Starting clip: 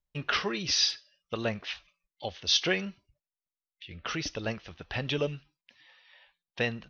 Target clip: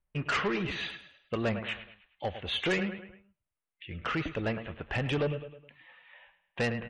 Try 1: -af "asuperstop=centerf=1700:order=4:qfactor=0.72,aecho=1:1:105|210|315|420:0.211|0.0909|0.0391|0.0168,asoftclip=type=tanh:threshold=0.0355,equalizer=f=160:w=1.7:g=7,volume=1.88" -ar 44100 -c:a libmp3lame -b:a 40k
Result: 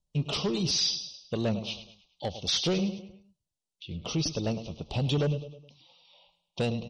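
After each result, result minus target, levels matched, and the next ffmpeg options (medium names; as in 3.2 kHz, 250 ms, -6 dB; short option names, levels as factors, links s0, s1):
2 kHz band -12.5 dB; 125 Hz band +2.0 dB
-af "asuperstop=centerf=5300:order=4:qfactor=0.72,aecho=1:1:105|210|315|420:0.211|0.0909|0.0391|0.0168,asoftclip=type=tanh:threshold=0.0355,equalizer=f=160:w=1.7:g=7,volume=1.88" -ar 44100 -c:a libmp3lame -b:a 40k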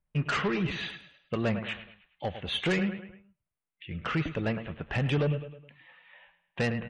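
125 Hz band +3.5 dB
-af "asuperstop=centerf=5300:order=4:qfactor=0.72,aecho=1:1:105|210|315|420:0.211|0.0909|0.0391|0.0168,asoftclip=type=tanh:threshold=0.0355,volume=1.88" -ar 44100 -c:a libmp3lame -b:a 40k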